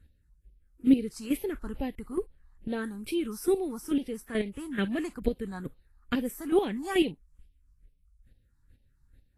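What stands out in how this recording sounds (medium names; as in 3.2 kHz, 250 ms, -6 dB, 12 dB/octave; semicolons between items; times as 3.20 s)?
chopped level 2.3 Hz, depth 65%, duty 15%; phasing stages 4, 2.3 Hz, lowest notch 470–1300 Hz; Vorbis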